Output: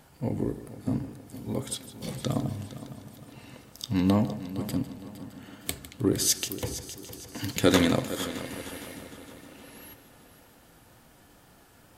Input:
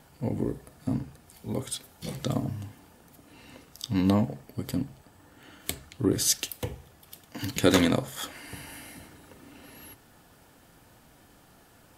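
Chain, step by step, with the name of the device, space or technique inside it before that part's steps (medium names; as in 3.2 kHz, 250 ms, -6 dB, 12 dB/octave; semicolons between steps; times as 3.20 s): multi-head tape echo (multi-head delay 154 ms, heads first and third, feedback 60%, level -15 dB; wow and flutter 22 cents)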